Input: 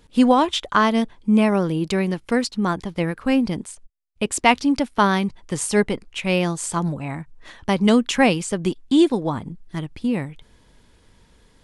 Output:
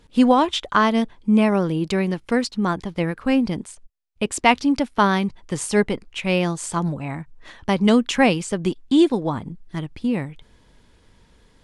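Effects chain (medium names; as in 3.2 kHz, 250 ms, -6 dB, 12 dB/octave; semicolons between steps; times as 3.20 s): treble shelf 9.6 kHz -7 dB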